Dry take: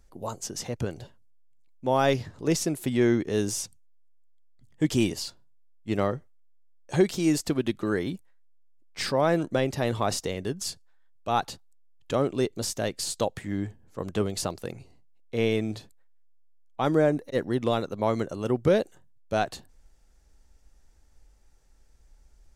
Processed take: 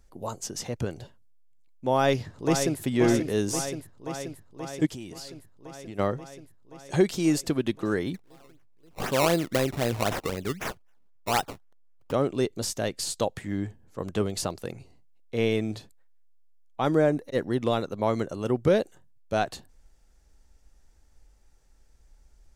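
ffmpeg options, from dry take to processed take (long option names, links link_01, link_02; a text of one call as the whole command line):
ffmpeg -i in.wav -filter_complex "[0:a]asplit=2[link_01][link_02];[link_02]afade=type=in:start_time=1.94:duration=0.01,afade=type=out:start_time=2.8:duration=0.01,aecho=0:1:530|1060|1590|2120|2650|3180|3710|4240|4770|5300|5830|6360:0.446684|0.335013|0.25126|0.188445|0.141333|0.106|0.0795001|0.0596251|0.0447188|0.0335391|0.0251543|0.0188657[link_03];[link_01][link_03]amix=inputs=2:normalize=0,asplit=3[link_04][link_05][link_06];[link_04]afade=type=out:start_time=4.85:duration=0.02[link_07];[link_05]acompressor=threshold=-37dB:ratio=5:attack=3.2:release=140:knee=1:detection=peak,afade=type=in:start_time=4.85:duration=0.02,afade=type=out:start_time=5.98:duration=0.02[link_08];[link_06]afade=type=in:start_time=5.98:duration=0.02[link_09];[link_07][link_08][link_09]amix=inputs=3:normalize=0,asettb=1/sr,asplit=3[link_10][link_11][link_12];[link_10]atrim=end=8.144[link_13];[link_11]atrim=start=8.14:end=12.12,asetpts=PTS-STARTPTS,afade=type=in:duration=0.004:curve=qsin,afade=type=out:start_time=3.976:duration=0.004:curve=qsin,acrusher=samples=19:mix=1:aa=0.000001:lfo=1:lforange=19:lforate=3.9[link_14];[link_12]atrim=start=12.116[link_15];[link_13][link_14]acrossfade=duration=0.004:curve1=hsin:curve2=qsin[link_16];[link_16][link_15]acrossfade=duration=0.004:curve1=qsin:curve2=hsin" out.wav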